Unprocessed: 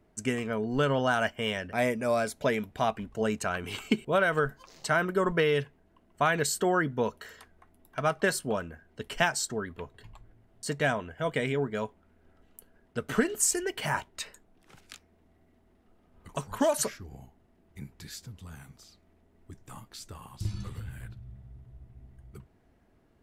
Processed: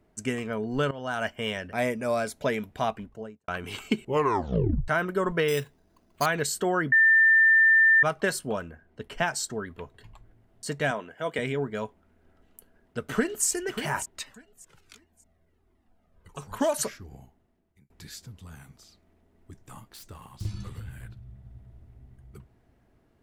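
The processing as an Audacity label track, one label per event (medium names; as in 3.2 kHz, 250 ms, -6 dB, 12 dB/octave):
0.910000	1.320000	fade in, from -17 dB
2.840000	3.480000	studio fade out
4.010000	4.010000	tape stop 0.87 s
5.480000	6.260000	careless resampling rate divided by 8×, down none, up hold
6.920000	8.030000	bleep 1.79 kHz -15 dBFS
8.710000	9.280000	treble shelf 3 kHz -8.5 dB
10.910000	11.390000	high-pass 220 Hz
13.030000	13.460000	echo throw 590 ms, feedback 30%, level -10 dB
14.230000	16.420000	Shepard-style flanger falling 1.3 Hz
17.140000	17.900000	fade out
19.810000	20.470000	self-modulated delay depth 0.24 ms
21.170000	21.700000	echo throw 280 ms, feedback 55%, level -4.5 dB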